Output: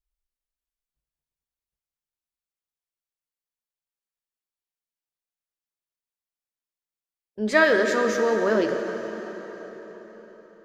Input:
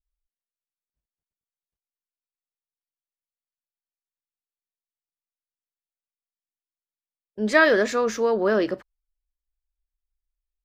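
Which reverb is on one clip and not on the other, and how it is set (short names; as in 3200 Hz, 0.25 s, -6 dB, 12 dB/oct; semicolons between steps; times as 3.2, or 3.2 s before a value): plate-style reverb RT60 4.8 s, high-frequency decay 0.8×, DRR 4.5 dB; gain -1.5 dB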